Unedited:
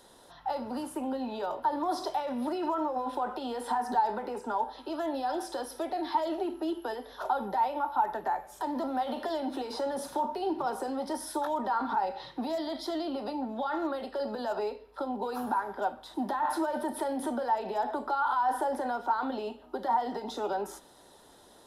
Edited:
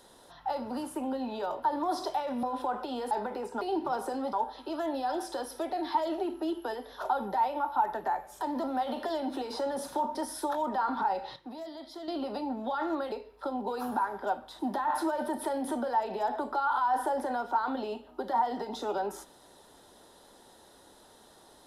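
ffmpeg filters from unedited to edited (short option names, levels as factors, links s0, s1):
-filter_complex "[0:a]asplit=9[s0][s1][s2][s3][s4][s5][s6][s7][s8];[s0]atrim=end=2.432[s9];[s1]atrim=start=2.958:end=3.642[s10];[s2]atrim=start=4.028:end=4.532[s11];[s3]atrim=start=10.348:end=11.072[s12];[s4]atrim=start=4.528:end=10.352[s13];[s5]atrim=start=11.068:end=12.282[s14];[s6]atrim=start=12.278:end=13.002,asetpts=PTS-STARTPTS,volume=0.355[s15];[s7]atrim=start=12.998:end=14.042[s16];[s8]atrim=start=14.668[s17];[s9][s10]acrossfade=d=0.004:c1=hsin:c2=hsin[s18];[s18][s11]acrossfade=d=0.004:c1=hsin:c2=hsin[s19];[s19][s12]acrossfade=d=0.004:c1=hsin:c2=hsin[s20];[s20][s13]acrossfade=d=0.004:c1=hsin:c2=hsin[s21];[s21][s14]acrossfade=d=0.004:c1=hsin:c2=hsin[s22];[s22][s15]acrossfade=d=0.004:c1=hsin:c2=hsin[s23];[s23][s16]acrossfade=d=0.004:c1=hsin:c2=hsin[s24];[s24][s17]acrossfade=d=0.004:c1=hsin:c2=hsin"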